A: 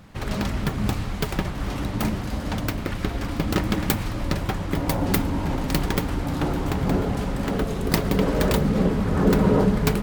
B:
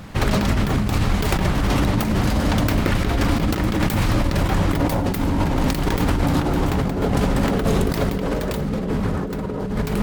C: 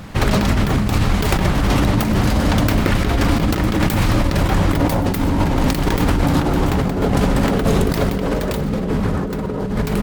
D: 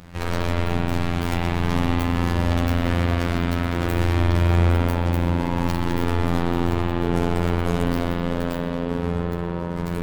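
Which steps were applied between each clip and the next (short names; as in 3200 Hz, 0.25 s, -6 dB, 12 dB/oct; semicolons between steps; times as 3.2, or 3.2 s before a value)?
negative-ratio compressor -27 dBFS, ratio -1; gain +7 dB
feedback echo 0.126 s, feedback 39%, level -19 dB; gain +3 dB
spring tank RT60 3.8 s, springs 41 ms, chirp 25 ms, DRR -5 dB; robotiser 86.2 Hz; gain -9 dB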